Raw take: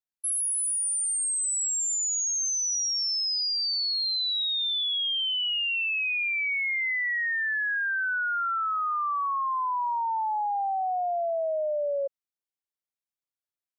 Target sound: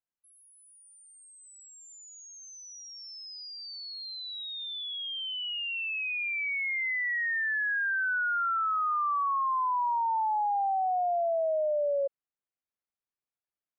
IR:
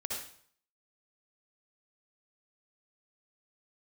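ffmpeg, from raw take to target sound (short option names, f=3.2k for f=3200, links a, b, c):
-af "lowpass=2.1k"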